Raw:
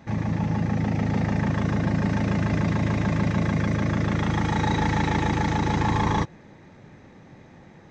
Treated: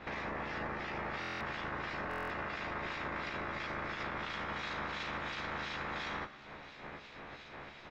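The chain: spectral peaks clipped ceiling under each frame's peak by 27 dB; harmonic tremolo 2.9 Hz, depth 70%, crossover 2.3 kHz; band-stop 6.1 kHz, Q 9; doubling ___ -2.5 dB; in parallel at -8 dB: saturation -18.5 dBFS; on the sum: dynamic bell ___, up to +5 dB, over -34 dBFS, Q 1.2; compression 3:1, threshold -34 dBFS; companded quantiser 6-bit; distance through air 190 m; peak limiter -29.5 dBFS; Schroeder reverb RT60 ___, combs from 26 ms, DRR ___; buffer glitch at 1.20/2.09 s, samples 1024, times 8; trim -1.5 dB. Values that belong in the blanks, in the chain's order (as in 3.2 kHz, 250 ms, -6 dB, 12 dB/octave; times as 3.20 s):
14 ms, 1.3 kHz, 3.5 s, 13.5 dB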